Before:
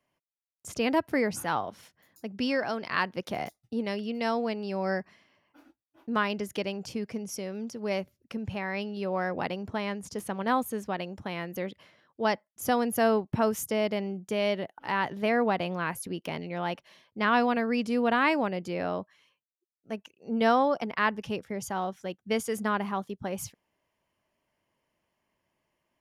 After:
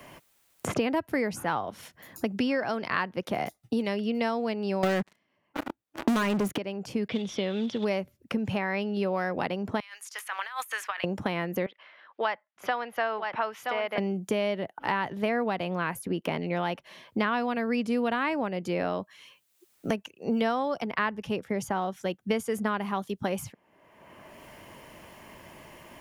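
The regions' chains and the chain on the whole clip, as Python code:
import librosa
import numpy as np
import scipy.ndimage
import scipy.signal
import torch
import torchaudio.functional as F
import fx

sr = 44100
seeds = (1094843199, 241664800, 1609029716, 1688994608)

y = fx.chain(x, sr, fx.tilt_eq(slope=-1.5),
    fx.leveller(passes=5), at=(4.83, 6.58))
y = fx.chain(y, sr, fx.block_float(bits=5),
    fx.lowpass_res(hz=3500.0, q=13.0), at=(7.08, 7.85))
y = fx.chain(y, sr, fx.bessel_highpass(hz=2000.0, order=4),
    fx.over_compress(threshold_db=-50.0, ratio=-1.0), at=(9.8, 11.04))
y = fx.chain(y, sr, fx.highpass(hz=1000.0, slope=12),
    fx.air_absorb(metres=340.0),
    fx.echo_single(ms=973, db=-7.5), at=(11.66, 13.98))
y = fx.peak_eq(y, sr, hz=5100.0, db=-3.5, octaves=0.96)
y = fx.band_squash(y, sr, depth_pct=100)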